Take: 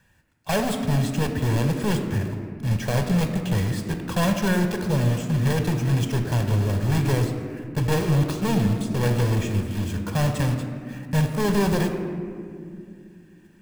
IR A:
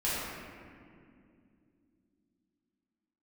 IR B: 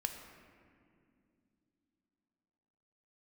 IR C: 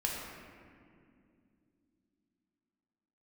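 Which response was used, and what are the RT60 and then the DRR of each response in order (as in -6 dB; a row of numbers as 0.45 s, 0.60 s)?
B; 2.4 s, no single decay rate, 2.4 s; -10.0 dB, 5.0 dB, -2.5 dB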